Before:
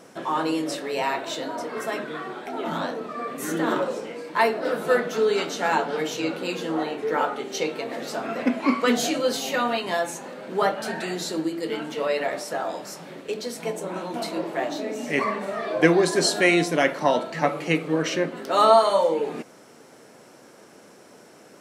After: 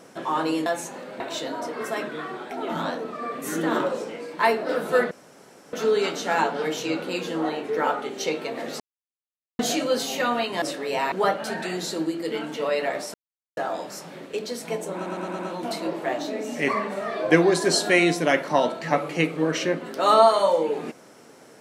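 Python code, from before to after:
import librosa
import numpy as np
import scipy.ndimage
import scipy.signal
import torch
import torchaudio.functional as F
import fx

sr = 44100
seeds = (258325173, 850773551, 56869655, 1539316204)

y = fx.edit(x, sr, fx.swap(start_s=0.66, length_s=0.5, other_s=9.96, other_length_s=0.54),
    fx.insert_room_tone(at_s=5.07, length_s=0.62),
    fx.silence(start_s=8.14, length_s=0.79),
    fx.insert_silence(at_s=12.52, length_s=0.43),
    fx.stutter(start_s=13.9, slice_s=0.11, count=5), tone=tone)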